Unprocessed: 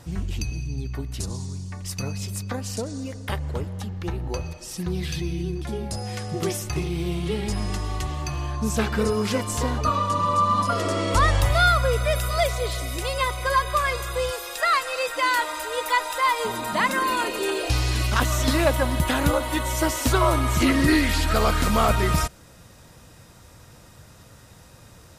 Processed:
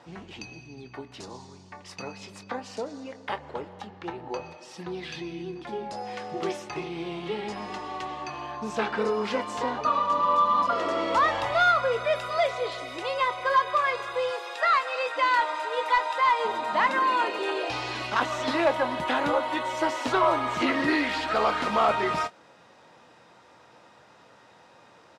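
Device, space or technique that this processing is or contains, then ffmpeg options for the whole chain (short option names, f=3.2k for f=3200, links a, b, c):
intercom: -filter_complex "[0:a]highpass=320,lowpass=3.5k,equalizer=f=860:t=o:w=0.47:g=5.5,asoftclip=type=tanh:threshold=-10dB,asplit=2[a][b];[b]adelay=24,volume=-12dB[c];[a][c]amix=inputs=2:normalize=0,volume=-1.5dB"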